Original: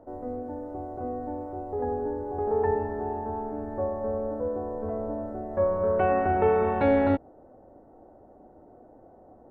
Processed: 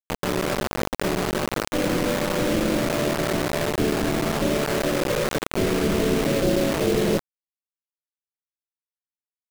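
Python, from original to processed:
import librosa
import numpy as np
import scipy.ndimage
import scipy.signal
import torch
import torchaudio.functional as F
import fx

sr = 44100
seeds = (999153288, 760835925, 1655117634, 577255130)

p1 = fx.octave_divider(x, sr, octaves=2, level_db=4.0)
p2 = fx.spec_gate(p1, sr, threshold_db=-10, keep='weak')
p3 = scipy.signal.sosfilt(scipy.signal.butter(12, 620.0, 'lowpass', fs=sr, output='sos'), p2)
p4 = fx.low_shelf(p3, sr, hz=210.0, db=-6.5)
p5 = fx.rider(p4, sr, range_db=4, speed_s=0.5)
p6 = p4 + F.gain(torch.from_numpy(p5), -2.0).numpy()
p7 = fx.quant_dither(p6, sr, seeds[0], bits=6, dither='none')
p8 = fx.env_flatten(p7, sr, amount_pct=50)
y = F.gain(torch.from_numpy(p8), 7.5).numpy()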